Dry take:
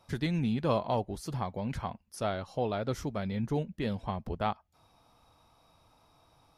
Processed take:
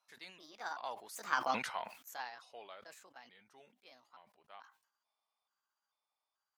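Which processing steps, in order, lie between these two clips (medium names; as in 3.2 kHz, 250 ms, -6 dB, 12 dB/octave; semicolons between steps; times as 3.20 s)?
pitch shift switched off and on +5 st, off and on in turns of 410 ms; Doppler pass-by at 1.48 s, 23 m/s, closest 2 m; high-pass 990 Hz 12 dB/octave; decay stretcher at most 110 dB/s; trim +11.5 dB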